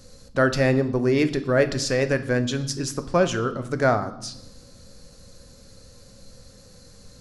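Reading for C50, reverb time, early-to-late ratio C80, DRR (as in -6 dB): 14.0 dB, 1.0 s, 17.0 dB, 9.0 dB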